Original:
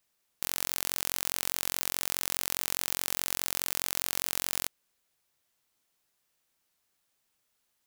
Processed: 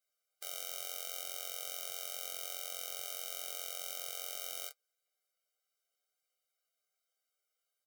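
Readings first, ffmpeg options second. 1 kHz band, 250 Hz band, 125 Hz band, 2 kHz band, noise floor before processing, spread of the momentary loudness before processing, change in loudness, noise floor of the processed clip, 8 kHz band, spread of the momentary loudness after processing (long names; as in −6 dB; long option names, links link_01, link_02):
−10.5 dB, below −30 dB, below −40 dB, −12.5 dB, −77 dBFS, 2 LU, −9.5 dB, below −85 dBFS, −9.5 dB, 2 LU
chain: -af "aecho=1:1:12|22|43:0.668|0.473|0.473,flanger=delay=5.1:depth=2.6:regen=-48:speed=0.77:shape=triangular,afftfilt=real='re*eq(mod(floor(b*sr/1024/400),2),1)':imag='im*eq(mod(floor(b*sr/1024/400),2),1)':win_size=1024:overlap=0.75,volume=-5dB"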